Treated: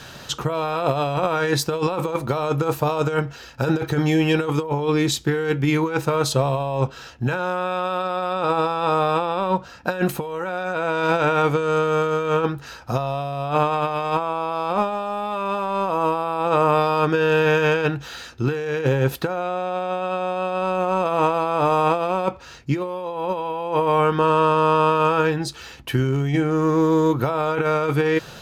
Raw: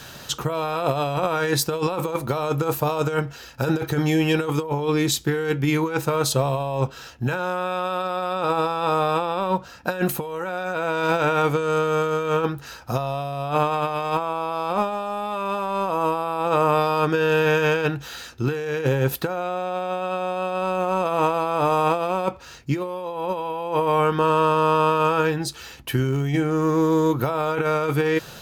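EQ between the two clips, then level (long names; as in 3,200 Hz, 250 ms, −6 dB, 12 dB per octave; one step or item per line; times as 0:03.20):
high-shelf EQ 10,000 Hz −12 dB
+1.5 dB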